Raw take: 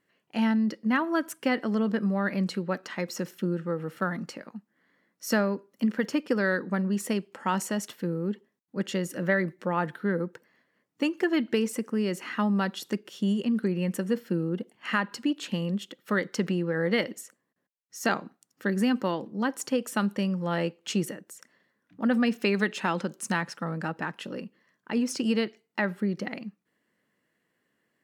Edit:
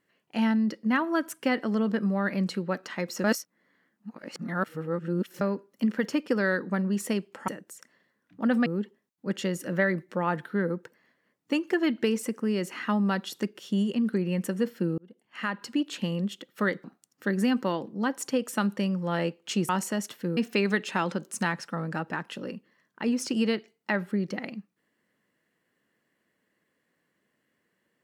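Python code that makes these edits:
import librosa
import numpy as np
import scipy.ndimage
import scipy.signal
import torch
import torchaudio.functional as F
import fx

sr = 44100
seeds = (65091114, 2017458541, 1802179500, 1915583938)

y = fx.edit(x, sr, fx.reverse_span(start_s=3.24, length_s=2.17),
    fx.swap(start_s=7.48, length_s=0.68, other_s=21.08, other_length_s=1.18),
    fx.fade_in_span(start_s=14.48, length_s=0.81),
    fx.cut(start_s=16.34, length_s=1.89), tone=tone)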